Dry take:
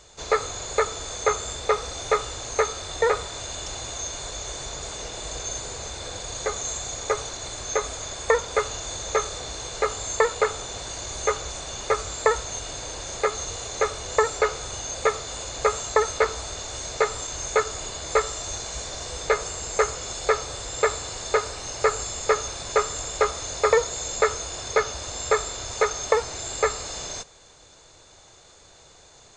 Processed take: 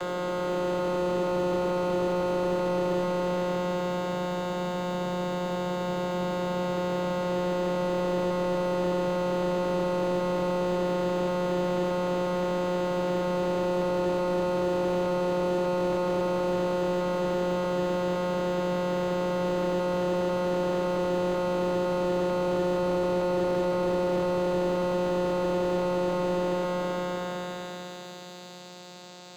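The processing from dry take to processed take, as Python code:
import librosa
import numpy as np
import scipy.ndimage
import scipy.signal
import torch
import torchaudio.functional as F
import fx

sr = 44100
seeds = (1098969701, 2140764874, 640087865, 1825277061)

y = fx.spec_blur(x, sr, span_ms=1480.0)
y = (np.kron(y[::4], np.eye(4)[0]) * 4)[:len(y)]
y = fx.vocoder(y, sr, bands=16, carrier='saw', carrier_hz=179.0)
y = fx.peak_eq(y, sr, hz=3700.0, db=5.0, octaves=1.1)
y = fx.slew_limit(y, sr, full_power_hz=13.0)
y = y * 10.0 ** (8.0 / 20.0)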